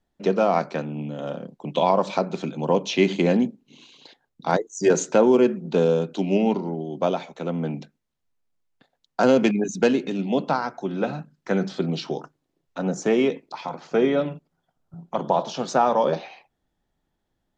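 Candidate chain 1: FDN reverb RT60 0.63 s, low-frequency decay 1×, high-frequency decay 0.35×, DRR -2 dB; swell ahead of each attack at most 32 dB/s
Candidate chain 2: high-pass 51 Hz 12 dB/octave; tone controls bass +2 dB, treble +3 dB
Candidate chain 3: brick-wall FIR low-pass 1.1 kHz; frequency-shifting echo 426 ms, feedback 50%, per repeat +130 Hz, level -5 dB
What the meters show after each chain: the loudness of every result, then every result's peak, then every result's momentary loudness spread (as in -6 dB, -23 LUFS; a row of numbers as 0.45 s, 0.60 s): -17.0 LUFS, -23.0 LUFS, -23.0 LUFS; -1.0 dBFS, -5.0 dBFS, -4.5 dBFS; 14 LU, 13 LU, 12 LU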